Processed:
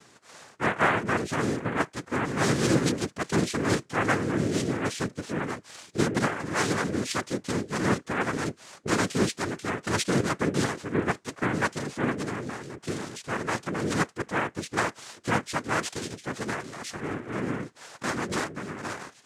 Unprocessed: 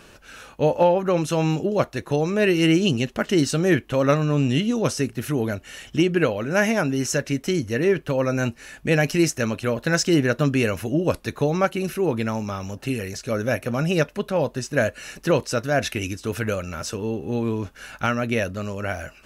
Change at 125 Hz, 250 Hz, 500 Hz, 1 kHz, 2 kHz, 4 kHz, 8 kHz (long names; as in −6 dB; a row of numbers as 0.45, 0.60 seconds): −7.0, −6.5, −8.5, −1.0, −2.5, −4.5, −3.0 decibels